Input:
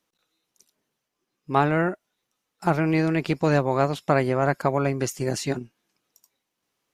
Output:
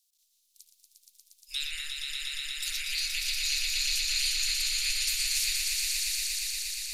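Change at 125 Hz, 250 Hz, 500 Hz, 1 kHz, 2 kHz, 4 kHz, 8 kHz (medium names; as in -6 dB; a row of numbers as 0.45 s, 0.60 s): under -30 dB, under -40 dB, under -40 dB, under -30 dB, -2.5 dB, +14.5 dB, +11.5 dB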